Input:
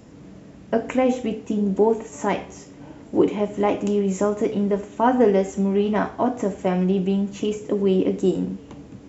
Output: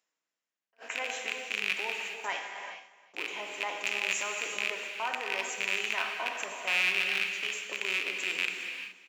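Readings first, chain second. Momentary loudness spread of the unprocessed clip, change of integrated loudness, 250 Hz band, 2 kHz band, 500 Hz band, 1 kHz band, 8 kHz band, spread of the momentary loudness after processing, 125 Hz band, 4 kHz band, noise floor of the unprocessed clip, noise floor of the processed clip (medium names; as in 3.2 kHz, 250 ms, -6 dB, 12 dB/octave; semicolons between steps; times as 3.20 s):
8 LU, -9.0 dB, -31.5 dB, +7.5 dB, -21.5 dB, -11.5 dB, no reading, 10 LU, under -30 dB, +7.5 dB, -44 dBFS, under -85 dBFS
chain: rattle on loud lows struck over -24 dBFS, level -14 dBFS; gate -31 dBFS, range -40 dB; reverse; upward compressor, threshold -35 dBFS; reverse; peak limiter -15 dBFS, peak gain reduction 9.5 dB; high-pass 1.5 kHz 12 dB/octave; on a send: delay 355 ms -18 dB; on the sum: gated-style reverb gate 450 ms flat, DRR 3 dB; attacks held to a fixed rise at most 450 dB/s; trim +1.5 dB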